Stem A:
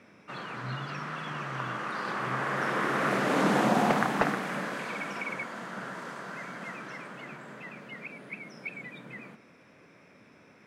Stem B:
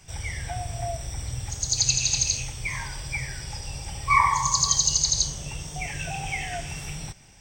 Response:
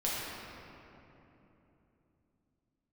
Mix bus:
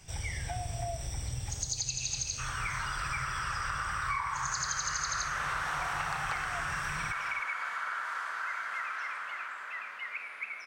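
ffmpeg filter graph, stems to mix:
-filter_complex "[0:a]highpass=frequency=1300:width_type=q:width=2.2,asoftclip=type=tanh:threshold=-18dB,adelay=2100,volume=-1.5dB,asplit=2[link_01][link_02];[link_02]volume=-10dB[link_03];[1:a]volume=-2.5dB[link_04];[2:a]atrim=start_sample=2205[link_05];[link_03][link_05]afir=irnorm=-1:irlink=0[link_06];[link_01][link_04][link_06]amix=inputs=3:normalize=0,acompressor=threshold=-31dB:ratio=6"

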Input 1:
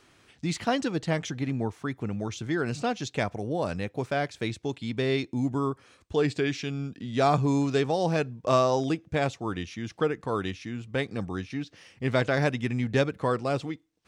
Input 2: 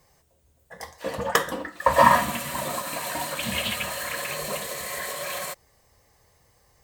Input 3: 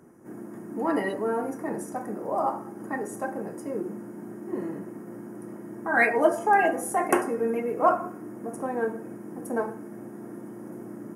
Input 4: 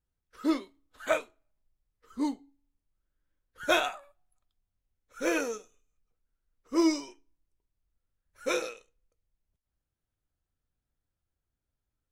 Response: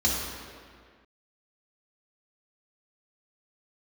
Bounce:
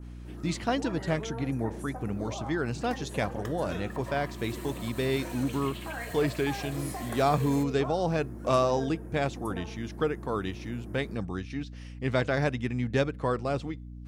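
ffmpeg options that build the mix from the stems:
-filter_complex "[0:a]aeval=exprs='val(0)+0.0112*(sin(2*PI*60*n/s)+sin(2*PI*2*60*n/s)/2+sin(2*PI*3*60*n/s)/3+sin(2*PI*4*60*n/s)/4+sin(2*PI*5*60*n/s)/5)':channel_layout=same,adynamicequalizer=threshold=0.00891:dfrequency=1900:dqfactor=0.7:tfrequency=1900:tqfactor=0.7:attack=5:release=100:ratio=0.375:range=1.5:mode=cutabove:tftype=highshelf,volume=-2dB[link_01];[1:a]acompressor=threshold=-29dB:ratio=6,adelay=2100,volume=-12dB[link_02];[2:a]acompressor=threshold=-30dB:ratio=6,volume=-7dB[link_03];[3:a]acompressor=threshold=-35dB:ratio=2,volume=-10dB[link_04];[link_01][link_02][link_03][link_04]amix=inputs=4:normalize=0"

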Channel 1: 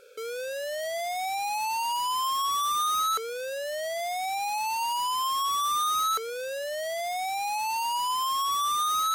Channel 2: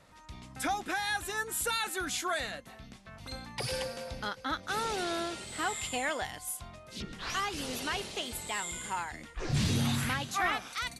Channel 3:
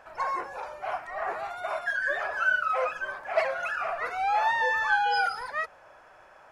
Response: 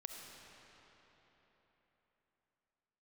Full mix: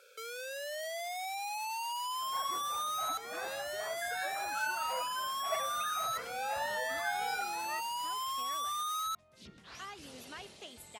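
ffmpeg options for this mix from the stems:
-filter_complex "[0:a]highpass=800,volume=-2dB[link_01];[1:a]adelay=2450,volume=-12.5dB[link_02];[2:a]equalizer=frequency=125:width_type=o:width=1:gain=6,equalizer=frequency=250:width_type=o:width=1:gain=10,equalizer=frequency=500:width_type=o:width=1:gain=-4,adelay=2150,volume=-12dB[link_03];[link_01][link_02]amix=inputs=2:normalize=0,acompressor=threshold=-38dB:ratio=2,volume=0dB[link_04];[link_03][link_04]amix=inputs=2:normalize=0,highpass=64,equalizer=frequency=600:width_type=o:width=0.42:gain=2.5"

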